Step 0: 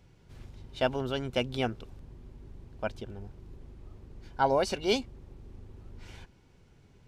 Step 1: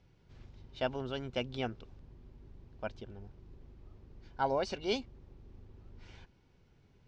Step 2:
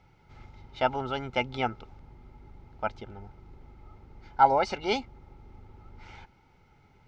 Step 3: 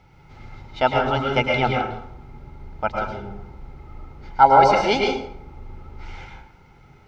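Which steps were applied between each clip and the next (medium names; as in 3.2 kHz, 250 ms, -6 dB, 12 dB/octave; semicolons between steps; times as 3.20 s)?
low-pass 6.1 kHz 24 dB/octave; trim -6 dB
small resonant body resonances 860/1300/2100 Hz, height 17 dB, ringing for 40 ms; trim +3.5 dB
plate-style reverb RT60 0.7 s, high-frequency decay 0.65×, pre-delay 95 ms, DRR -0.5 dB; trim +6.5 dB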